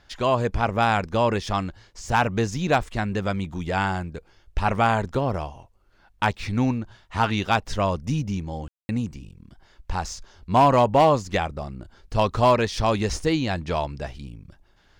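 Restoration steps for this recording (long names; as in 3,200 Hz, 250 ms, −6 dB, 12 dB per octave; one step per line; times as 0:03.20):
clipped peaks rebuilt −9.5 dBFS
ambience match 0:08.68–0:08.89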